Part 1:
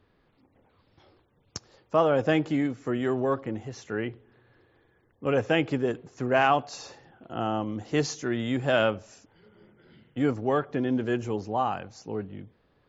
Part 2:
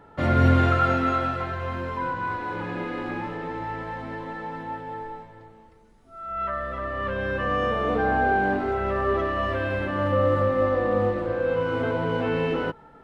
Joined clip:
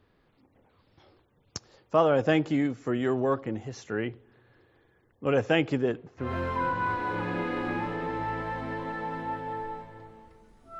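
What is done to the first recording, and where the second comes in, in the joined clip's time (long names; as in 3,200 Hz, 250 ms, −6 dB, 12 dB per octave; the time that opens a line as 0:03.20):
part 1
0:05.81–0:06.37: low-pass filter 5,800 Hz → 1,500 Hz
0:06.27: continue with part 2 from 0:01.68, crossfade 0.20 s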